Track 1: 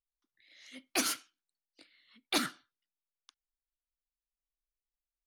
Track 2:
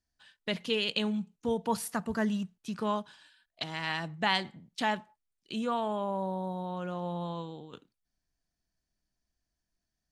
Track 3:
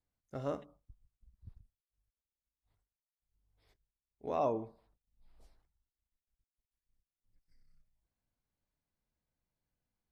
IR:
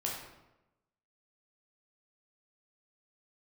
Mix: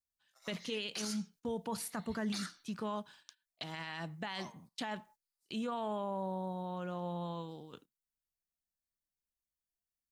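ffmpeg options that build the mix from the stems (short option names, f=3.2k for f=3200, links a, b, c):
-filter_complex "[0:a]lowpass=5.5k,equalizer=f=1.9k:w=0.55:g=9.5,volume=-7.5dB[a];[1:a]volume=-4dB[b];[2:a]highpass=f=960:w=0.5412,highpass=f=960:w=1.3066,volume=-9.5dB,asplit=2[c][d];[d]apad=whole_len=232167[e];[a][e]sidechaincompress=threshold=-59dB:ratio=8:attack=9.2:release=304[f];[f][c]amix=inputs=2:normalize=0,aexciter=amount=6.5:drive=8:freq=4.4k,acompressor=threshold=-47dB:ratio=1.5,volume=0dB[g];[b][g]amix=inputs=2:normalize=0,agate=range=-14dB:threshold=-58dB:ratio=16:detection=peak,alimiter=level_in=5.5dB:limit=-24dB:level=0:latency=1:release=32,volume=-5.5dB"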